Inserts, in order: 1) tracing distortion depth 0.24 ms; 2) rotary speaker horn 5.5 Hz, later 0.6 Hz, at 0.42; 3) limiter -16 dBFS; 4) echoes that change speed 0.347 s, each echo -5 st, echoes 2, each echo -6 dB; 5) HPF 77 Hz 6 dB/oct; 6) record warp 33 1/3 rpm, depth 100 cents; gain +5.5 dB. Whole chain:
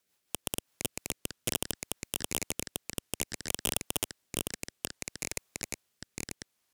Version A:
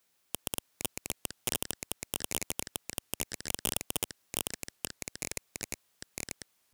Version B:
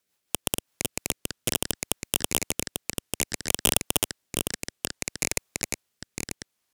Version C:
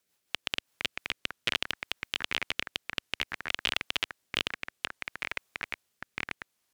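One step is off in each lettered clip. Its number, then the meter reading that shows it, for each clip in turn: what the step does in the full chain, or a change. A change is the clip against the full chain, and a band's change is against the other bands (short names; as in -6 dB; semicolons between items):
2, 125 Hz band -1.5 dB; 3, mean gain reduction 6.5 dB; 1, crest factor change -2.5 dB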